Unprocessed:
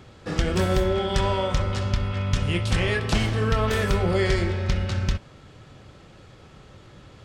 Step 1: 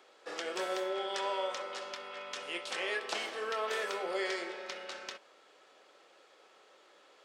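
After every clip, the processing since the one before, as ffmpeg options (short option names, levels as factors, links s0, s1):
-filter_complex "[0:a]acrossover=split=9900[s0][s1];[s1]acompressor=threshold=0.00158:ratio=4:attack=1:release=60[s2];[s0][s2]amix=inputs=2:normalize=0,highpass=f=420:w=0.5412,highpass=f=420:w=1.3066,volume=0.398"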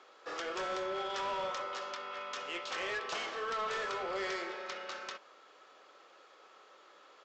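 -af "equalizer=f=1200:w=2.4:g=7,aresample=16000,asoftclip=type=tanh:threshold=0.0266,aresample=44100"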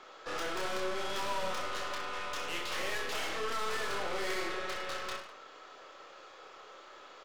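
-af "aeval=exprs='(tanh(141*val(0)+0.5)-tanh(0.5))/141':c=same,aecho=1:1:30|64.5|104.2|149.8|202.3:0.631|0.398|0.251|0.158|0.1,volume=2.24"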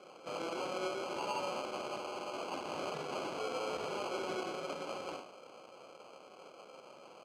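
-af "acrusher=samples=24:mix=1:aa=0.000001,highpass=250,lowpass=6000,volume=0.841"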